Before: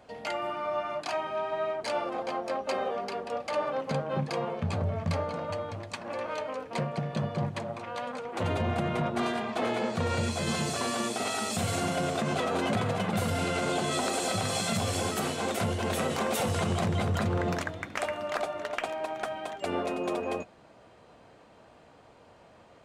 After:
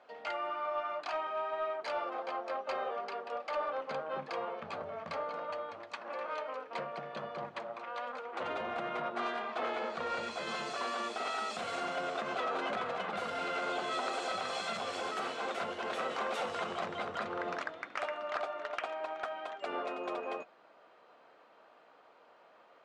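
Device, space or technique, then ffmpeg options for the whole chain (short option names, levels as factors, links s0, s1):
intercom: -af "highpass=430,lowpass=4100,equalizer=f=1300:t=o:w=0.46:g=5.5,asoftclip=type=tanh:threshold=0.112,volume=0.596"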